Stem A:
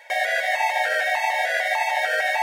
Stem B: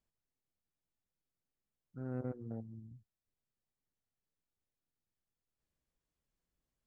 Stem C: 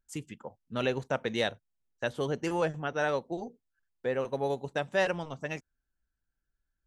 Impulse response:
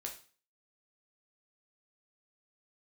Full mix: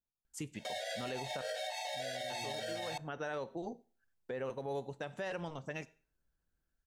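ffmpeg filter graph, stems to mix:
-filter_complex "[0:a]equalizer=frequency=500:width_type=o:width=1:gain=10,equalizer=frequency=1000:width_type=o:width=1:gain=-7,equalizer=frequency=2000:width_type=o:width=1:gain=-9,equalizer=frequency=4000:width_type=o:width=1:gain=11,equalizer=frequency=8000:width_type=o:width=1:gain=7,flanger=delay=16:depth=3.7:speed=1.8,adelay=550,volume=-9dB,asplit=2[link_01][link_02];[link_02]volume=-20.5dB[link_03];[1:a]lowpass=1100,dynaudnorm=framelen=350:gausssize=3:maxgain=10dB,alimiter=level_in=6.5dB:limit=-24dB:level=0:latency=1,volume=-6.5dB,volume=-9dB,asplit=2[link_04][link_05];[2:a]adelay=250,volume=-2dB,asplit=3[link_06][link_07][link_08];[link_06]atrim=end=1.42,asetpts=PTS-STARTPTS,afade=type=out:start_time=1.416:duration=0.004:curve=hsin[link_09];[link_07]atrim=start=1.42:end=2.3,asetpts=PTS-STARTPTS,volume=0[link_10];[link_08]atrim=start=2.3,asetpts=PTS-STARTPTS,afade=type=in:duration=0.004:curve=hsin[link_11];[link_09][link_10][link_11]concat=n=3:v=0:a=1,asplit=2[link_12][link_13];[link_13]volume=-11.5dB[link_14];[link_05]apad=whole_len=313712[link_15];[link_12][link_15]sidechaincompress=threshold=-59dB:ratio=8:attack=16:release=255[link_16];[3:a]atrim=start_sample=2205[link_17];[link_03][link_14]amix=inputs=2:normalize=0[link_18];[link_18][link_17]afir=irnorm=-1:irlink=0[link_19];[link_01][link_04][link_16][link_19]amix=inputs=4:normalize=0,alimiter=level_in=7dB:limit=-24dB:level=0:latency=1:release=121,volume=-7dB"

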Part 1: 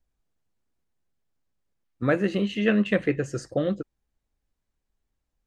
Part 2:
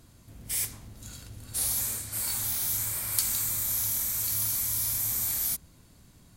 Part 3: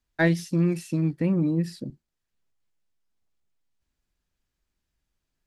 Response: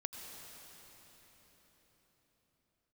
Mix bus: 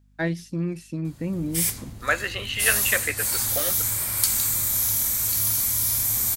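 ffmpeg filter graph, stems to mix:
-filter_complex "[0:a]highpass=1200,volume=2dB[link_01];[1:a]adelay=1050,volume=-0.5dB[link_02];[2:a]volume=-11dB[link_03];[link_01][link_02][link_03]amix=inputs=3:normalize=0,acontrast=60,aeval=exprs='val(0)+0.00141*(sin(2*PI*50*n/s)+sin(2*PI*2*50*n/s)/2+sin(2*PI*3*50*n/s)/3+sin(2*PI*4*50*n/s)/4+sin(2*PI*5*50*n/s)/5)':channel_layout=same"

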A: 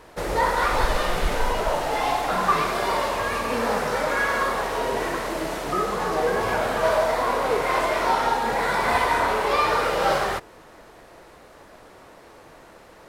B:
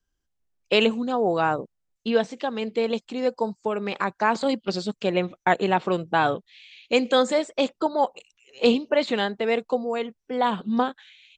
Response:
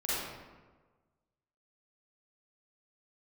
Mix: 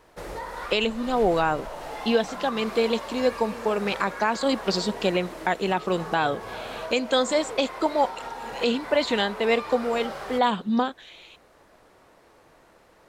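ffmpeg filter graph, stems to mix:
-filter_complex "[0:a]acompressor=threshold=-23dB:ratio=6,volume=-8.5dB[link_01];[1:a]highshelf=frequency=3500:gain=7,volume=1.5dB[link_02];[link_01][link_02]amix=inputs=2:normalize=0,alimiter=limit=-10.5dB:level=0:latency=1:release=369"

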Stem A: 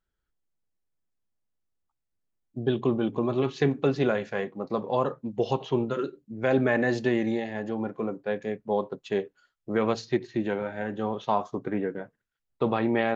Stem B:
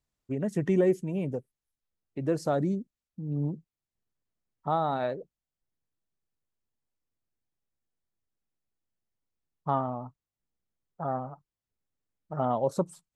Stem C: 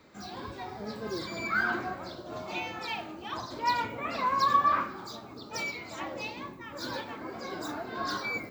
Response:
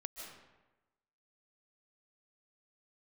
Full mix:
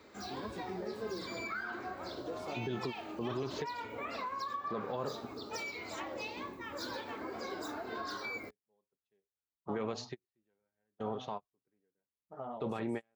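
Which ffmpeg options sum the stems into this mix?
-filter_complex "[0:a]equalizer=frequency=490:width_type=o:width=2.8:gain=-3.5,volume=-4dB[link_01];[1:a]adynamicequalizer=threshold=0.0126:dfrequency=480:dqfactor=1.1:tfrequency=480:tqfactor=1.1:attack=5:release=100:ratio=0.375:range=3:mode=cutabove:tftype=bell,flanger=delay=16:depth=7.8:speed=1.7,volume=-9dB,asplit=2[link_02][link_03];[2:a]volume=0dB[link_04];[link_03]apad=whole_len=580336[link_05];[link_01][link_05]sidechaingate=range=-47dB:threshold=-55dB:ratio=16:detection=peak[link_06];[link_02][link_04]amix=inputs=2:normalize=0,equalizer=frequency=150:width_type=o:width=0.67:gain=-9,acompressor=threshold=-38dB:ratio=6,volume=0dB[link_07];[link_06][link_07]amix=inputs=2:normalize=0,highpass=41,equalizer=frequency=430:width=5.6:gain=5,alimiter=level_in=3.5dB:limit=-24dB:level=0:latency=1:release=85,volume=-3.5dB"

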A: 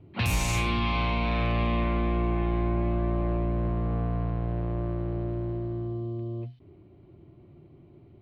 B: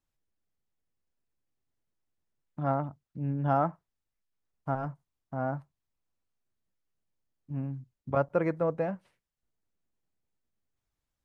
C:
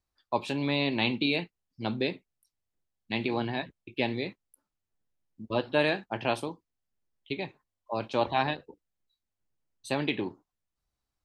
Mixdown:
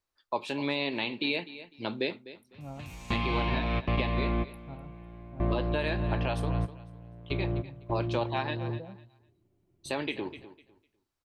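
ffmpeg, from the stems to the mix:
ffmpeg -i stem1.wav -i stem2.wav -i stem3.wav -filter_complex "[0:a]equalizer=frequency=10000:width=1.5:gain=-3.5,adelay=2350,volume=0.5dB,asplit=2[link_01][link_02];[link_02]volume=-19.5dB[link_03];[1:a]tiltshelf=frequency=970:gain=9.5,volume=-20dB[link_04];[2:a]bass=frequency=250:gain=-9,treble=frequency=4000:gain=-2,bandreject=frequency=750:width=12,volume=2dB,asplit=3[link_05][link_06][link_07];[link_06]volume=-17.5dB[link_08];[link_07]apad=whole_len=466106[link_09];[link_01][link_09]sidechaingate=range=-31dB:threshold=-52dB:ratio=16:detection=peak[link_10];[link_03][link_08]amix=inputs=2:normalize=0,aecho=0:1:251|502|753:1|0.21|0.0441[link_11];[link_10][link_04][link_05][link_11]amix=inputs=4:normalize=0,alimiter=limit=-18dB:level=0:latency=1:release=288" out.wav

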